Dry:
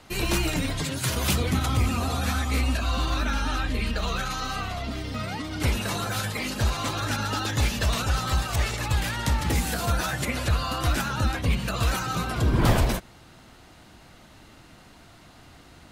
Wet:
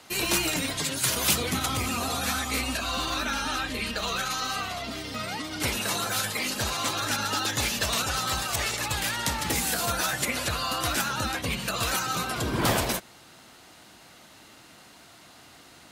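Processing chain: high-pass 280 Hz 6 dB/octave; treble shelf 3.9 kHz +6.5 dB

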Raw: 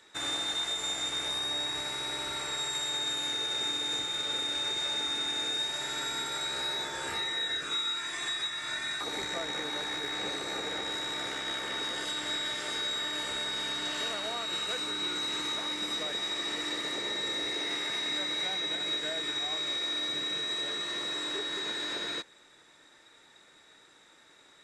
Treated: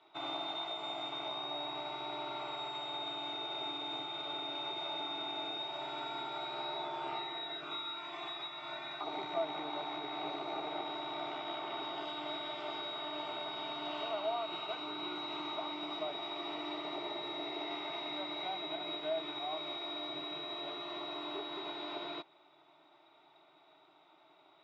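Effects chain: cabinet simulation 200–3000 Hz, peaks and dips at 230 Hz -5 dB, 420 Hz -4 dB, 640 Hz +8 dB, 1.6 kHz +4 dB; static phaser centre 340 Hz, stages 8; trim +1 dB

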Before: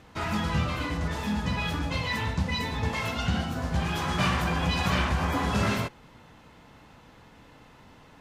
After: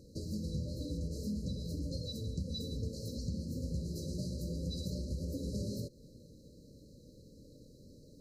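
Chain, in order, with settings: compression 4:1, threshold -33 dBFS, peak gain reduction 10.5 dB; brick-wall FIR band-stop 610–3900 Hz; trim -1.5 dB

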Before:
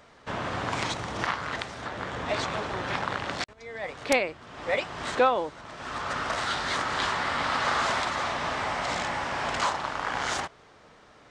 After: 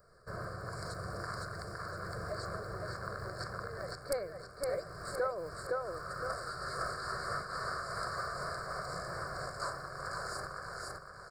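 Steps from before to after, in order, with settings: rattle on loud lows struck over -45 dBFS, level -31 dBFS; peaking EQ 840 Hz -13 dB 3 oct; static phaser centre 1.3 kHz, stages 8; feedback delay 513 ms, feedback 37%, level -3 dB; compression 1.5:1, threshold -42 dBFS, peak gain reduction 5 dB; elliptic band-stop 1.9–4.7 kHz, stop band 40 dB; peaking EQ 63 Hz -7.5 dB 2.3 oct; random flutter of the level, depth 65%; trim +8.5 dB

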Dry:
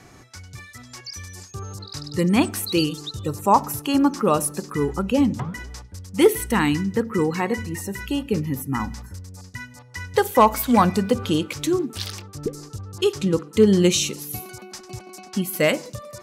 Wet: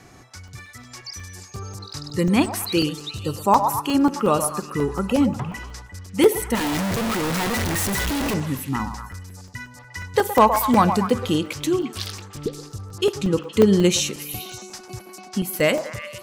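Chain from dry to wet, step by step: 6.55–8.34 s: one-bit comparator; repeats whose band climbs or falls 117 ms, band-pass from 790 Hz, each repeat 0.7 oct, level -5.5 dB; crackling interface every 0.18 s, samples 128, zero, from 0.30 s

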